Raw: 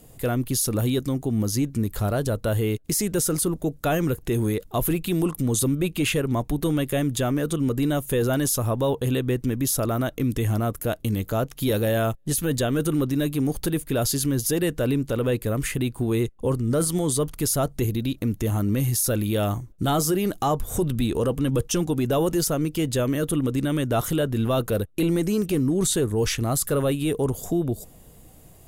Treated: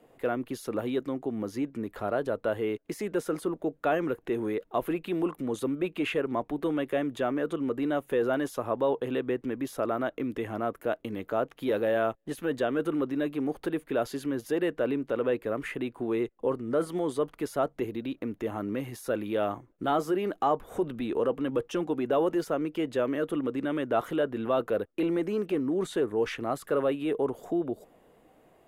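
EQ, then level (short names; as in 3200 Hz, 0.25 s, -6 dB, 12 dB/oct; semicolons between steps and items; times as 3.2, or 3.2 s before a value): three-band isolator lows -21 dB, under 260 Hz, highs -22 dB, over 2700 Hz; -1.5 dB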